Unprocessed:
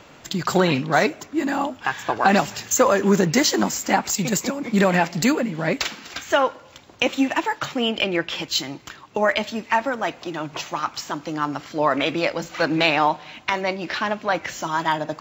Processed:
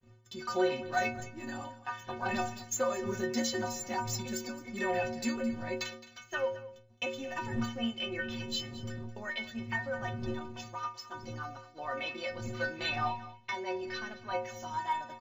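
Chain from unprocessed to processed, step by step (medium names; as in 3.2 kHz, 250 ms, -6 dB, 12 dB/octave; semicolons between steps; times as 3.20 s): wind noise 180 Hz -29 dBFS; expander -27 dBFS; bass shelf 79 Hz -7.5 dB; inharmonic resonator 110 Hz, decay 0.69 s, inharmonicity 0.03; delay 215 ms -17 dB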